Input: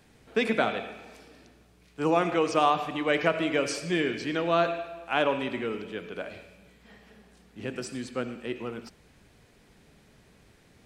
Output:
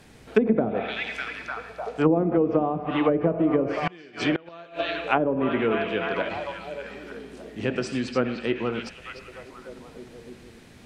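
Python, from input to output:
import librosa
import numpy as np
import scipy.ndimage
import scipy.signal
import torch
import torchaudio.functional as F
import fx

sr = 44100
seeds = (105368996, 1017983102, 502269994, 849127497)

y = fx.echo_stepped(x, sr, ms=300, hz=3500.0, octaves=-0.7, feedback_pct=70, wet_db=-4.5)
y = fx.gate_flip(y, sr, shuts_db=-19.0, range_db=-28, at=(3.73, 4.97))
y = fx.env_lowpass_down(y, sr, base_hz=380.0, full_db=-21.5)
y = F.gain(torch.from_numpy(y), 8.0).numpy()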